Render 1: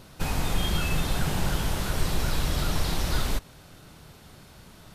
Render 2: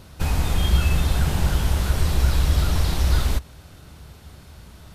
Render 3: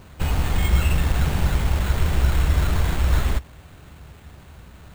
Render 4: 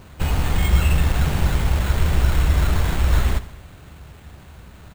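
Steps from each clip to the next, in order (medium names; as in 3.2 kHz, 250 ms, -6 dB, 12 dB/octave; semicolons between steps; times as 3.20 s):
peaking EQ 68 Hz +14 dB 0.77 oct; trim +1.5 dB
sample-rate reducer 5.4 kHz, jitter 0%
feedback delay 69 ms, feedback 59%, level -16 dB; trim +1.5 dB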